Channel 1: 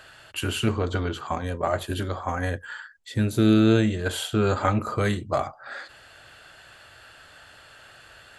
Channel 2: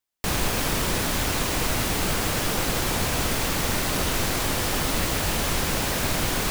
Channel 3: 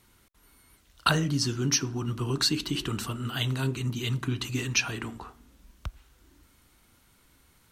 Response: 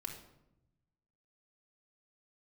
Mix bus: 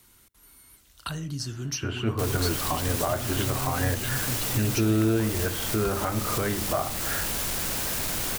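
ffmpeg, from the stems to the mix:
-filter_complex "[0:a]lowpass=2.1k,dynaudnorm=f=250:g=5:m=10dB,adelay=1400,volume=-7.5dB,asplit=2[a][b];[b]volume=-9dB[c];[1:a]asoftclip=type=tanh:threshold=-20dB,adelay=1950,volume=-6.5dB[d];[2:a]acrossover=split=130[e][f];[f]acompressor=threshold=-41dB:ratio=2.5[g];[e][g]amix=inputs=2:normalize=0,volume=-0.5dB,asplit=2[h][i];[i]volume=-20dB[j];[a][d]amix=inputs=2:normalize=0,alimiter=limit=-19.5dB:level=0:latency=1:release=257,volume=0dB[k];[3:a]atrim=start_sample=2205[l];[c][j]amix=inputs=2:normalize=0[m];[m][l]afir=irnorm=-1:irlink=0[n];[h][k][n]amix=inputs=3:normalize=0,highshelf=f=5.4k:g=10.5"

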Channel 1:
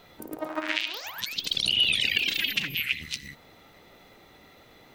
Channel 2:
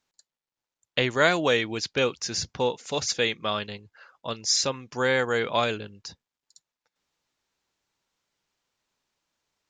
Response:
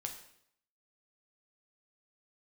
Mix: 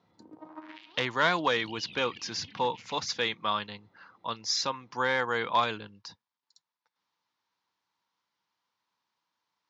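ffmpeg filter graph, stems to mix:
-filter_complex "[0:a]tiltshelf=f=650:g=9.5,volume=-14dB[a];[1:a]volume=-2.5dB[b];[a][b]amix=inputs=2:normalize=0,equalizer=f=940:t=o:w=0.28:g=6.5,aeval=exprs='clip(val(0),-1,0.158)':c=same,highpass=f=110:w=0.5412,highpass=f=110:w=1.3066,equalizer=f=140:t=q:w=4:g=-8,equalizer=f=250:t=q:w=4:g=-4,equalizer=f=400:t=q:w=4:g=-7,equalizer=f=600:t=q:w=4:g=-6,equalizer=f=1.1k:t=q:w=4:g=4,equalizer=f=2.6k:t=q:w=4:g=-3,lowpass=f=5.4k:w=0.5412,lowpass=f=5.4k:w=1.3066"

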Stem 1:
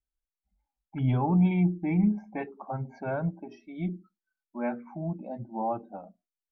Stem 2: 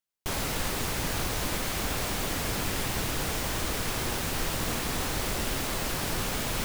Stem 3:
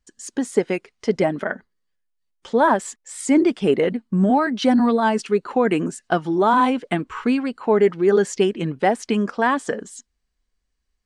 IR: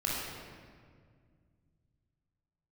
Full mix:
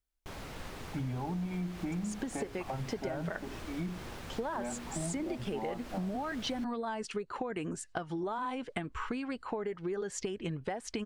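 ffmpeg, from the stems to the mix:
-filter_complex "[0:a]acompressor=threshold=-33dB:ratio=2.5,volume=2.5dB[a];[1:a]lowpass=f=2.8k:p=1,volume=-12dB[b];[2:a]asubboost=boost=8:cutoff=78,acompressor=threshold=-21dB:ratio=6,adelay=1850,volume=-4.5dB[c];[a][b][c]amix=inputs=3:normalize=0,acompressor=threshold=-33dB:ratio=6"

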